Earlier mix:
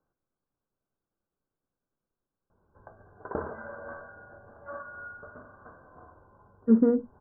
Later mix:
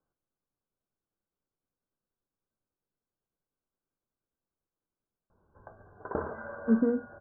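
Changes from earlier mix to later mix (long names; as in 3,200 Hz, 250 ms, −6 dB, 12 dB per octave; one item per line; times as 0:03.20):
speech −4.5 dB
background: entry +2.80 s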